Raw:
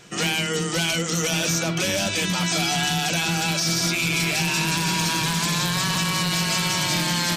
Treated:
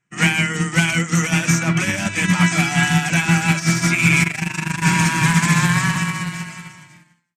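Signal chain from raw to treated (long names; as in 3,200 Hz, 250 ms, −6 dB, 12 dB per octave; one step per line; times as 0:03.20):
fade-out on the ending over 1.72 s
graphic EQ with 10 bands 125 Hz +10 dB, 250 Hz +5 dB, 500 Hz −7 dB, 1,000 Hz +4 dB, 2,000 Hz +12 dB, 4,000 Hz −9 dB, 8,000 Hz +11 dB
0:04.23–0:04.82: amplitude modulation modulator 25 Hz, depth 60%
high-shelf EQ 5,400 Hz −9.5 dB
expander for the loud parts 2.5 to 1, over −40 dBFS
level +5 dB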